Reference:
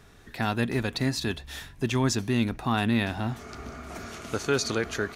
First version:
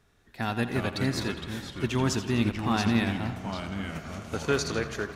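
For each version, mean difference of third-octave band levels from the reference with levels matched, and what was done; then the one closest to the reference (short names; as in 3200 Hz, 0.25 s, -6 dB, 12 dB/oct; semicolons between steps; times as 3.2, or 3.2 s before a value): 4.5 dB: echoes that change speed 0.28 s, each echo -3 st, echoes 3, each echo -6 dB; tape echo 85 ms, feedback 75%, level -9 dB, low-pass 5200 Hz; upward expander 1.5:1, over -44 dBFS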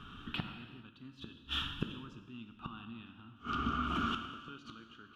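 11.5 dB: EQ curve 100 Hz 0 dB, 280 Hz +8 dB, 440 Hz -9 dB, 690 Hz -12 dB, 1300 Hz +13 dB, 2000 Hz -13 dB, 3000 Hz +15 dB, 4300 Hz -9 dB, 9100 Hz -18 dB; flipped gate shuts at -23 dBFS, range -29 dB; non-linear reverb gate 0.47 s falling, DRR 6 dB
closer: first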